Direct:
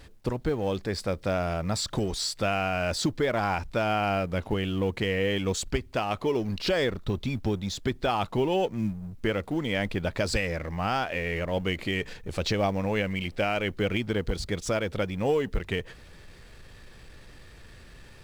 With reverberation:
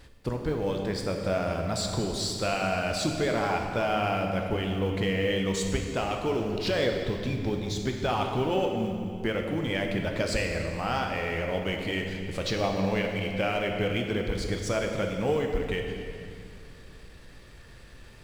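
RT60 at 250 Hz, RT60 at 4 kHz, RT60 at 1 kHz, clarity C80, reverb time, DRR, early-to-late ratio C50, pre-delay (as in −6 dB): 3.0 s, 2.0 s, 2.3 s, 5.0 dB, 2.4 s, 2.0 dB, 3.5 dB, 7 ms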